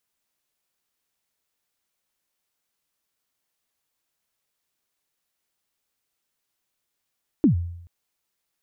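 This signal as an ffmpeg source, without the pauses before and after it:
ffmpeg -f lavfi -i "aevalsrc='0.282*pow(10,-3*t/0.76)*sin(2*PI*(340*0.111/log(86/340)*(exp(log(86/340)*min(t,0.111)/0.111)-1)+86*max(t-0.111,0)))':duration=0.43:sample_rate=44100" out.wav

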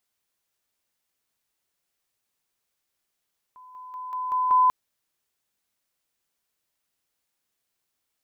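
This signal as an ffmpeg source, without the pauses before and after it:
ffmpeg -f lavfi -i "aevalsrc='pow(10,(-45+6*floor(t/0.19))/20)*sin(2*PI*1010*t)':duration=1.14:sample_rate=44100" out.wav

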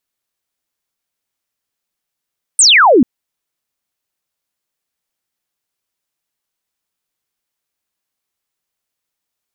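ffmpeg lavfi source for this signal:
ffmpeg -f lavfi -i "aevalsrc='0.596*clip(t/0.002,0,1)*clip((0.44-t)/0.002,0,1)*sin(2*PI*9200*0.44/log(220/9200)*(exp(log(220/9200)*t/0.44)-1))':duration=0.44:sample_rate=44100" out.wav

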